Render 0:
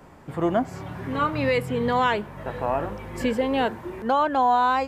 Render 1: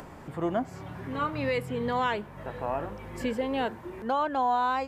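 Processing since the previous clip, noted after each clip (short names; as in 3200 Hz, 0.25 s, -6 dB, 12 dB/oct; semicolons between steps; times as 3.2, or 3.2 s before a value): upward compressor, threshold -30 dBFS; gain -6 dB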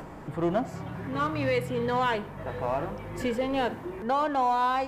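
in parallel at -6 dB: overloaded stage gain 35 dB; on the sum: shoebox room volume 2100 m³, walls furnished, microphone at 0.62 m; mismatched tape noise reduction decoder only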